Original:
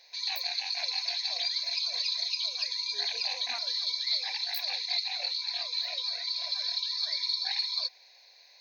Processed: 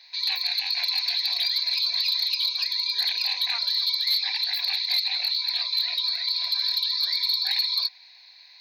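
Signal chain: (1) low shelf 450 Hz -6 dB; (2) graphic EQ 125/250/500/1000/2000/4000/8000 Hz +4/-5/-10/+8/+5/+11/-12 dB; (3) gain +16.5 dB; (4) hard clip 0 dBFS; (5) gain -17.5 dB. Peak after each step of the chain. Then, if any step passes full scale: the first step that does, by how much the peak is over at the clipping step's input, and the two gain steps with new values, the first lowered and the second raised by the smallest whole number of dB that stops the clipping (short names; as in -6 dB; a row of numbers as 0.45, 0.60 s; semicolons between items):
-17.0, -9.0, +7.5, 0.0, -17.5 dBFS; step 3, 7.5 dB; step 3 +8.5 dB, step 5 -9.5 dB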